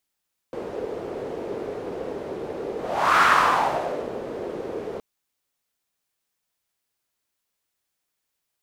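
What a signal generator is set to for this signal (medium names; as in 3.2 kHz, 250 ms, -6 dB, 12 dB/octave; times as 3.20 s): whoosh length 4.47 s, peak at 2.68 s, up 0.48 s, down 1.00 s, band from 440 Hz, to 1.3 kHz, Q 3.3, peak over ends 15 dB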